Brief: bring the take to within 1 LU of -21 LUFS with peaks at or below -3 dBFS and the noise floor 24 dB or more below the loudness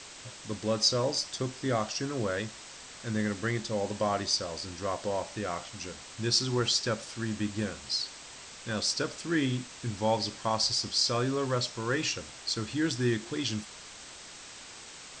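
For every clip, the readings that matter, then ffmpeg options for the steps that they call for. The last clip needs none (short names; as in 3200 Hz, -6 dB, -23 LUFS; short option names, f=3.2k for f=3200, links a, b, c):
noise floor -47 dBFS; noise floor target -55 dBFS; loudness -30.5 LUFS; peak -11.0 dBFS; loudness target -21.0 LUFS
-> -af "afftdn=nr=8:nf=-47"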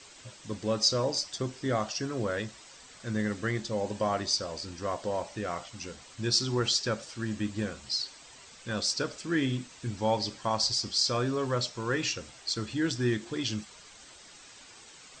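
noise floor -52 dBFS; noise floor target -55 dBFS
-> -af "afftdn=nr=6:nf=-52"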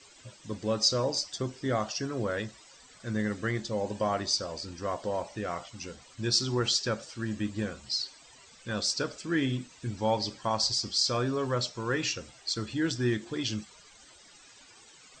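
noise floor -55 dBFS; loudness -30.5 LUFS; peak -11.0 dBFS; loudness target -21.0 LUFS
-> -af "volume=9.5dB,alimiter=limit=-3dB:level=0:latency=1"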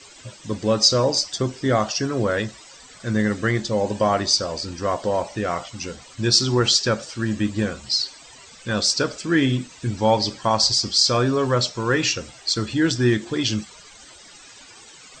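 loudness -21.0 LUFS; peak -3.0 dBFS; noise floor -46 dBFS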